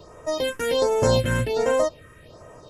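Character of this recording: phasing stages 4, 1.3 Hz, lowest notch 700–4200 Hz

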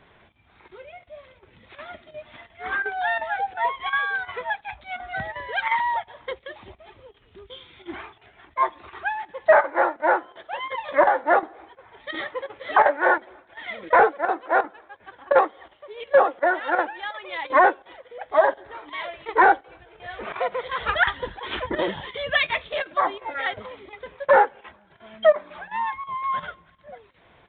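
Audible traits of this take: chopped level 2.8 Hz, depth 65%, duty 90%; G.726

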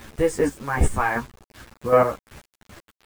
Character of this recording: chopped level 2.6 Hz, depth 60%, duty 25%; a quantiser's noise floor 8-bit, dither none; a shimmering, thickened sound

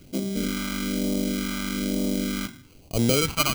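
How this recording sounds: aliases and images of a low sample rate 1800 Hz, jitter 0%; phasing stages 2, 1.1 Hz, lowest notch 470–1400 Hz

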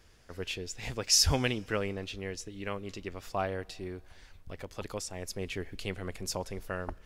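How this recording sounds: noise floor -57 dBFS; spectral tilt -3.0 dB/oct

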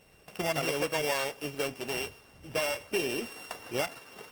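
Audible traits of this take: a buzz of ramps at a fixed pitch in blocks of 16 samples; Opus

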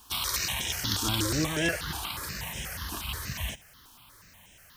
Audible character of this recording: a quantiser's noise floor 10-bit, dither triangular; notches that jump at a steady rate 8.3 Hz 550–4400 Hz

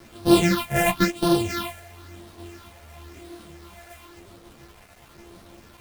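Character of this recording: a buzz of ramps at a fixed pitch in blocks of 128 samples; phasing stages 6, 0.97 Hz, lowest notch 290–2100 Hz; a quantiser's noise floor 8-bit, dither none; a shimmering, thickened sound

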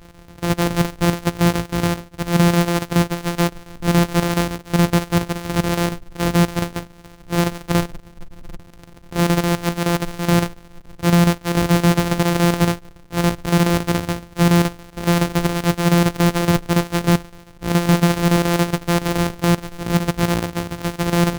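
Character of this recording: a buzz of ramps at a fixed pitch in blocks of 256 samples; chopped level 7.1 Hz, depth 60%, duty 80%

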